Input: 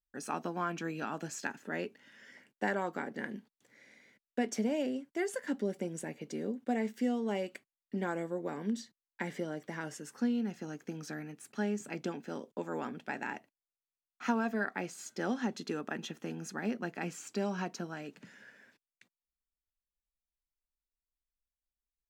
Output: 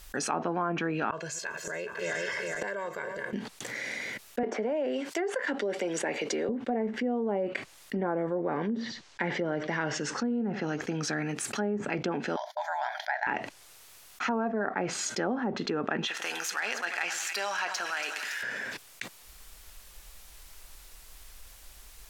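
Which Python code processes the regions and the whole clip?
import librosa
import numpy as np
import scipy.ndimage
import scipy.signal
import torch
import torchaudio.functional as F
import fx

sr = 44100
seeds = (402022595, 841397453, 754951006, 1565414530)

y = fx.chain(x, sr, fx.reverse_delay_fb(ms=207, feedback_pct=65, wet_db=-13.5),
    fx.comb(ms=1.9, depth=0.96),
    fx.gate_flip(shuts_db=-34.0, range_db=-24), at=(1.1, 3.33))
y = fx.chain(y, sr, fx.highpass(hz=360.0, slope=12),
    fx.high_shelf(hz=6600.0, db=6.5),
    fx.band_squash(depth_pct=70), at=(4.43, 6.49))
y = fx.chain(y, sr, fx.lowpass(hz=6500.0, slope=24),
    fx.echo_single(ms=92, db=-20.0), at=(8.35, 10.81))
y = fx.chain(y, sr, fx.transient(attack_db=2, sustain_db=-5),
    fx.brickwall_highpass(low_hz=590.0),
    fx.fixed_phaser(hz=1800.0, stages=8), at=(12.36, 13.27))
y = fx.chain(y, sr, fx.dead_time(dead_ms=0.053),
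    fx.highpass(hz=1200.0, slope=12),
    fx.echo_split(split_hz=1700.0, low_ms=96, high_ms=282, feedback_pct=52, wet_db=-14), at=(16.07, 18.43))
y = fx.env_lowpass_down(y, sr, base_hz=920.0, full_db=-30.5)
y = fx.peak_eq(y, sr, hz=220.0, db=-6.5, octaves=1.4)
y = fx.env_flatten(y, sr, amount_pct=70)
y = y * 10.0 ** (4.0 / 20.0)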